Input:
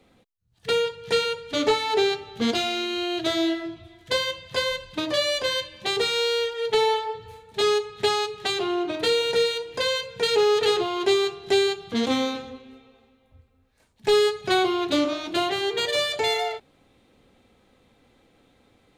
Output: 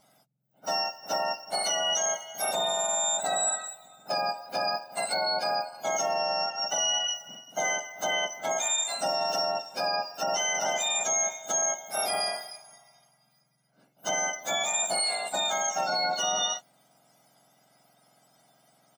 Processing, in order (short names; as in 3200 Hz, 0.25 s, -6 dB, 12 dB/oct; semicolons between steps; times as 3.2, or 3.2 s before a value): spectrum mirrored in octaves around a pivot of 1600 Hz; comb 1.4 ms, depth 55%; limiter -19 dBFS, peak gain reduction 11 dB